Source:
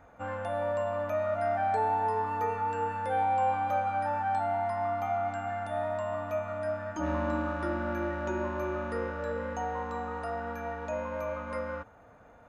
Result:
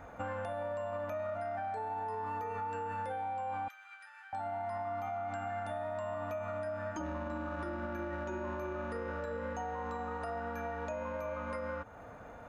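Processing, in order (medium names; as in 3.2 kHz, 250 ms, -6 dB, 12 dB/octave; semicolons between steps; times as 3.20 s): peak limiter -28 dBFS, peak gain reduction 9.5 dB; compression 4:1, threshold -43 dBFS, peak gain reduction 10 dB; 3.68–4.33 s: inverse Chebyshev high-pass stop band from 270 Hz, stop band 80 dB; trim +6 dB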